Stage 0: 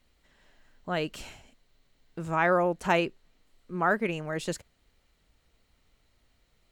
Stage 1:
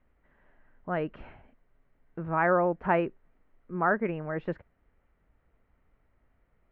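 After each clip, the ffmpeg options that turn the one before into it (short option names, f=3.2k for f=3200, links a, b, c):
-af "lowpass=f=1.9k:w=0.5412,lowpass=f=1.9k:w=1.3066"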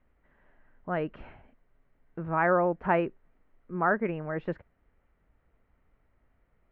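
-af anull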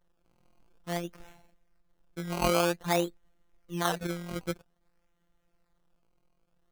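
-af "afftfilt=real='hypot(re,im)*cos(PI*b)':imag='0':win_size=1024:overlap=0.75,acrusher=samples=17:mix=1:aa=0.000001:lfo=1:lforange=17:lforate=0.52"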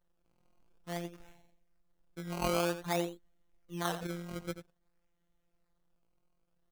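-filter_complex "[0:a]asplit=2[a][b];[b]adelay=87.46,volume=-11dB,highshelf=f=4k:g=-1.97[c];[a][c]amix=inputs=2:normalize=0,volume=-6dB"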